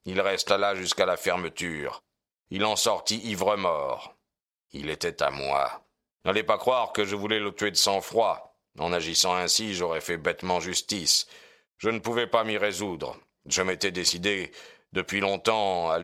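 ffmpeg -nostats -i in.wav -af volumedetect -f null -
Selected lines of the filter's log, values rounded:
mean_volume: -27.8 dB
max_volume: -4.9 dB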